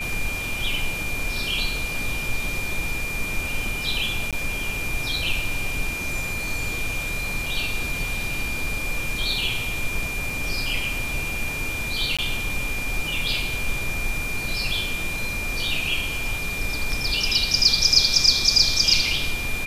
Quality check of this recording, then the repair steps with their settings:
whine 2.4 kHz -28 dBFS
4.31–4.33 s: dropout 17 ms
7.46 s: dropout 3.5 ms
10.30 s: dropout 2 ms
12.17–12.19 s: dropout 16 ms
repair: band-stop 2.4 kHz, Q 30; interpolate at 4.31 s, 17 ms; interpolate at 7.46 s, 3.5 ms; interpolate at 10.30 s, 2 ms; interpolate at 12.17 s, 16 ms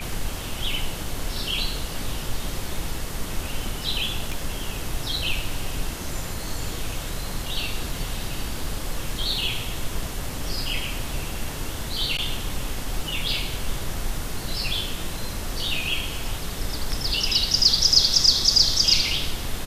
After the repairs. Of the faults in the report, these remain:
nothing left

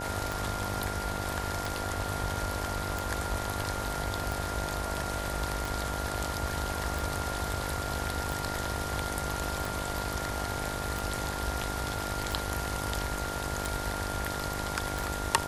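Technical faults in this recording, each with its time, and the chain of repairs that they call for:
buzz 50 Hz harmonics 19 -38 dBFS
tick 45 rpm
whine 1.4 kHz -38 dBFS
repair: de-click; band-stop 1.4 kHz, Q 30; de-hum 50 Hz, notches 19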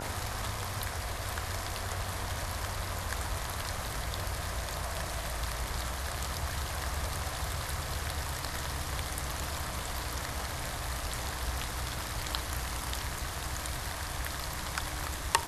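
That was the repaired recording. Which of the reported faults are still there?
nothing left

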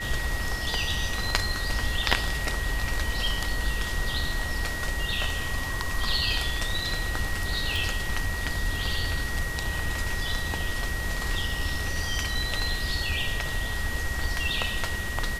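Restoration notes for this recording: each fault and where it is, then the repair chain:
whine 1.9 kHz -33 dBFS
7.76 s: pop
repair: de-click; band-stop 1.9 kHz, Q 30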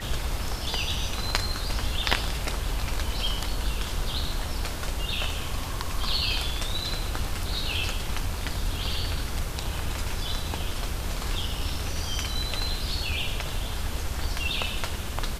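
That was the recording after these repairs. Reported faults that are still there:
nothing left

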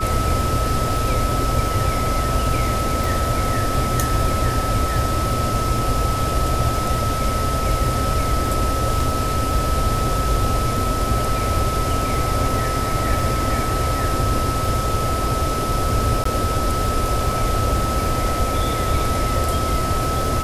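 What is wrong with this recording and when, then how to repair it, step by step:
crackle 23 per s -27 dBFS
whine 1.3 kHz -24 dBFS
3.04 s: pop
16.24–16.25 s: dropout 14 ms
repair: de-click; band-stop 1.3 kHz, Q 30; interpolate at 16.24 s, 14 ms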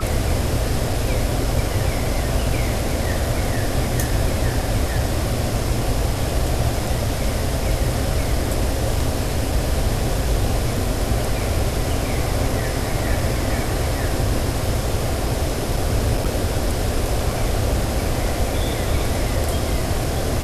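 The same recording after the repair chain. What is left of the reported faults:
nothing left

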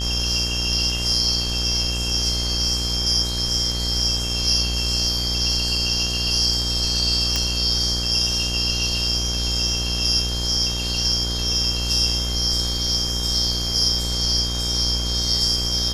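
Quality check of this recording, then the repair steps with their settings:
buzz 60 Hz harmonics 30 -27 dBFS
whine 3.2 kHz -29 dBFS
7.36 s: pop -6 dBFS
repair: de-click; band-stop 3.2 kHz, Q 30; de-hum 60 Hz, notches 30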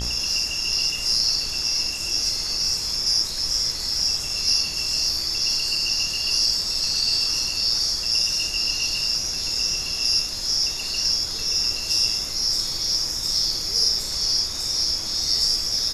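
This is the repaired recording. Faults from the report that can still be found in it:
nothing left

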